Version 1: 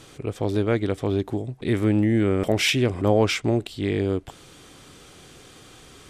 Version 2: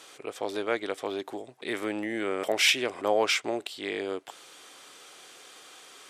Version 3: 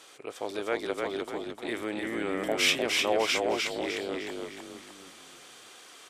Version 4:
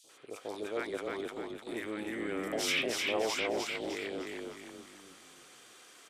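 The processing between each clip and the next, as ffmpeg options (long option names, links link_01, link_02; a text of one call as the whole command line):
ffmpeg -i in.wav -af "highpass=590" out.wav
ffmpeg -i in.wav -filter_complex "[0:a]asplit=6[link_01][link_02][link_03][link_04][link_05][link_06];[link_02]adelay=303,afreqshift=-32,volume=-3dB[link_07];[link_03]adelay=606,afreqshift=-64,volume=-10.5dB[link_08];[link_04]adelay=909,afreqshift=-96,volume=-18.1dB[link_09];[link_05]adelay=1212,afreqshift=-128,volume=-25.6dB[link_10];[link_06]adelay=1515,afreqshift=-160,volume=-33.1dB[link_11];[link_01][link_07][link_08][link_09][link_10][link_11]amix=inputs=6:normalize=0,volume=-2.5dB" out.wav
ffmpeg -i in.wav -filter_complex "[0:a]acrossover=split=770|3600[link_01][link_02][link_03];[link_01]adelay=40[link_04];[link_02]adelay=90[link_05];[link_04][link_05][link_03]amix=inputs=3:normalize=0,volume=-4dB" out.wav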